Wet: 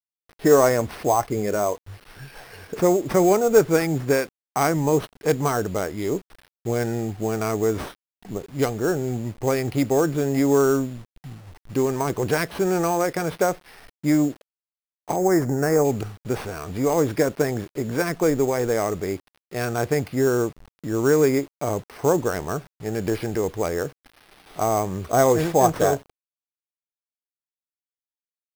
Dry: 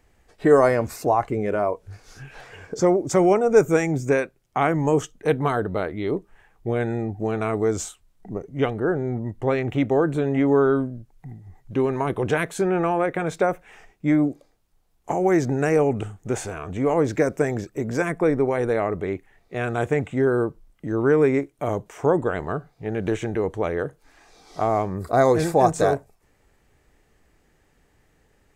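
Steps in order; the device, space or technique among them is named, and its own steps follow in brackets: early 8-bit sampler (sample-rate reducer 7.1 kHz, jitter 0%; bit crusher 8-bit); 15.16–15.85 s: high-order bell 3.2 kHz -12.5 dB 1.1 oct

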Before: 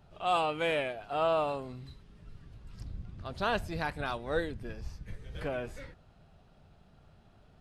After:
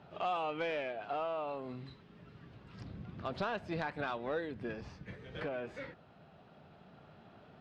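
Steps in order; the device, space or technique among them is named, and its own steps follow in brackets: AM radio (band-pass 170–3300 Hz; compression 6:1, threshold -39 dBFS, peak gain reduction 14 dB; saturation -31.5 dBFS, distortion -21 dB; tremolo 0.27 Hz, depth 29%); trim +7 dB

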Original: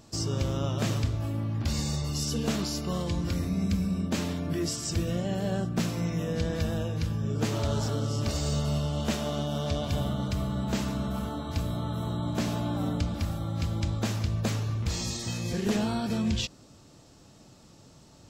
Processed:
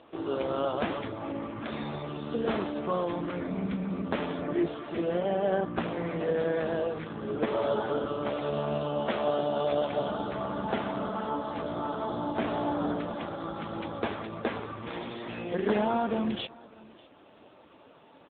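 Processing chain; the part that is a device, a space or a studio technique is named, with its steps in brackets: dynamic bell 2.7 kHz, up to -6 dB, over -56 dBFS, Q 2.4; satellite phone (band-pass 390–3400 Hz; delay 601 ms -23 dB; trim +9 dB; AMR-NB 5.9 kbps 8 kHz)

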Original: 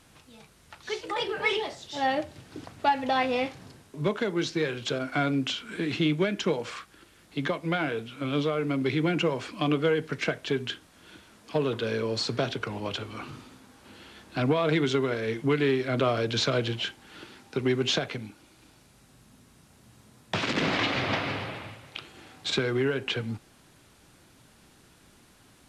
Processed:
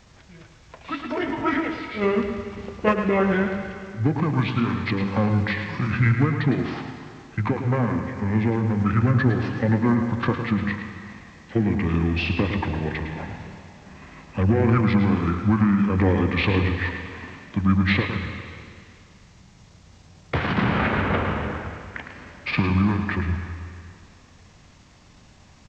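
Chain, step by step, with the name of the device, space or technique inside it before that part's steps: monster voice (pitch shift -5 st; formant shift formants -3.5 st; bass shelf 160 Hz +5 dB; delay 108 ms -8.5 dB; reverberation RT60 2.1 s, pre-delay 119 ms, DRR 8 dB); trim +3.5 dB

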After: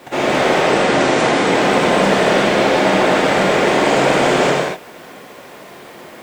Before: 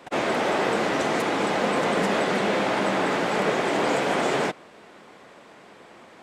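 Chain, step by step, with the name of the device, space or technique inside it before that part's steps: compact cassette (saturation -17 dBFS, distortion -19 dB; low-pass 11 kHz; wow and flutter 19 cents; white noise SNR 36 dB); 0.62–1.45 s: steep low-pass 10 kHz 96 dB/octave; peaking EQ 1.2 kHz -2.5 dB; gated-style reverb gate 270 ms flat, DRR -4.5 dB; trim +6 dB

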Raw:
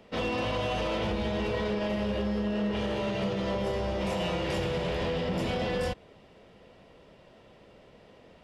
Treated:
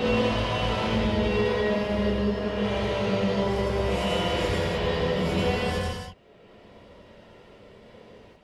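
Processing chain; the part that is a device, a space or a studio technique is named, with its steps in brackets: reverb removal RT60 1.3 s; gated-style reverb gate 220 ms rising, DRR 2 dB; reverse reverb (reverse; reverberation RT60 1.0 s, pre-delay 75 ms, DRR -5 dB; reverse)

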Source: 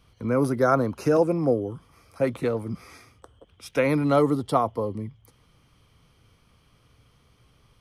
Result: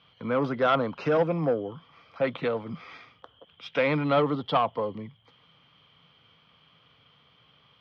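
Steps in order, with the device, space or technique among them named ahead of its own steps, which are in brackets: overdrive pedal into a guitar cabinet (overdrive pedal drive 15 dB, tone 3.1 kHz, clips at -7 dBFS; cabinet simulation 86–4200 Hz, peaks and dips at 160 Hz +8 dB, 360 Hz -6 dB, 3.2 kHz +9 dB); trim -5.5 dB

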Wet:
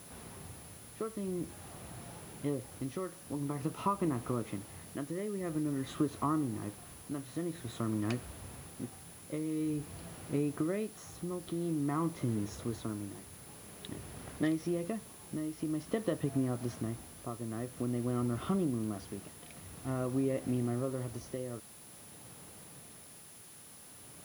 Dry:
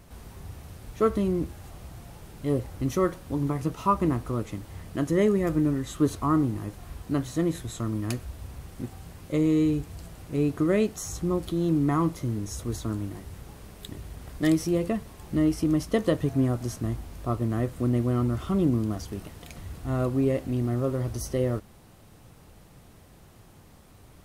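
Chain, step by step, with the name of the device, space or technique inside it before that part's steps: medium wave at night (band-pass 130–3600 Hz; compression, threshold -28 dBFS, peak gain reduction 11.5 dB; tremolo 0.49 Hz, depth 56%; whistle 10 kHz -54 dBFS; white noise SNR 20 dB)

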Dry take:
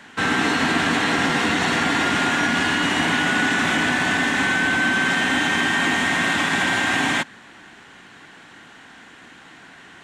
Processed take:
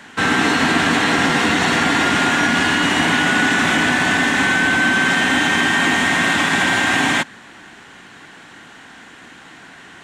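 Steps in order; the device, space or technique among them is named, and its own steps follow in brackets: exciter from parts (in parallel at -12 dB: high-pass 4.4 kHz + saturation -36.5 dBFS, distortion -9 dB); on the sum: trim +4 dB

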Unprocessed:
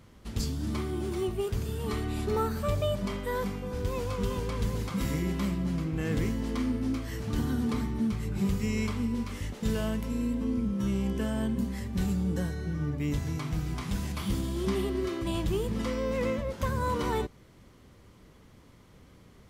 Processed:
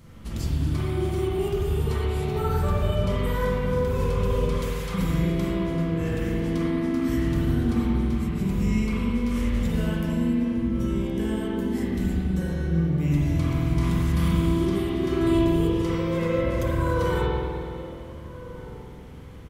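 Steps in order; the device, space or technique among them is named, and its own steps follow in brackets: 4.49–4.92 s: Bessel high-pass 1 kHz; ASMR close-microphone chain (bass shelf 190 Hz +6.5 dB; compression, threshold -28 dBFS, peak gain reduction 9 dB; treble shelf 6.2 kHz +7 dB); echo from a far wall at 250 m, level -15 dB; spring tank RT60 2.3 s, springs 42/48 ms, chirp 75 ms, DRR -7.5 dB

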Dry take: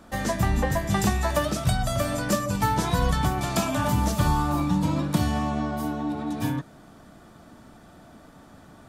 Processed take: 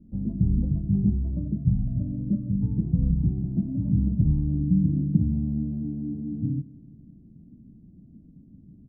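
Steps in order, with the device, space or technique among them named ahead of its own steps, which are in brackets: the neighbour's flat through the wall (low-pass 270 Hz 24 dB/octave; peaking EQ 170 Hz +4.5 dB 0.86 oct); feedback delay 165 ms, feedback 58%, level -19.5 dB

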